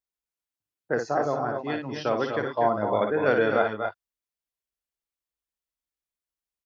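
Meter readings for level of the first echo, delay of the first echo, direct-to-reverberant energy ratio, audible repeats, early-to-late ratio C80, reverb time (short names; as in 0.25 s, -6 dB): -6.5 dB, 57 ms, none, 2, none, none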